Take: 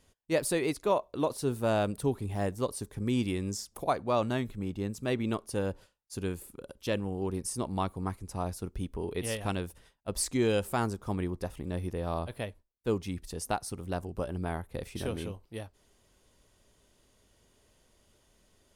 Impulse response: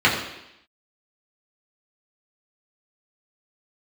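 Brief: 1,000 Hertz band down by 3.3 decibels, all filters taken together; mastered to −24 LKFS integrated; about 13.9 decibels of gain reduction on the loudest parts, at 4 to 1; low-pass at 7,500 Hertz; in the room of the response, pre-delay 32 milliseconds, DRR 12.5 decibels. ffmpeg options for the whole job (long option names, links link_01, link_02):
-filter_complex "[0:a]lowpass=7500,equalizer=frequency=1000:width_type=o:gain=-4.5,acompressor=threshold=-41dB:ratio=4,asplit=2[link_01][link_02];[1:a]atrim=start_sample=2205,adelay=32[link_03];[link_02][link_03]afir=irnorm=-1:irlink=0,volume=-34dB[link_04];[link_01][link_04]amix=inputs=2:normalize=0,volume=20.5dB"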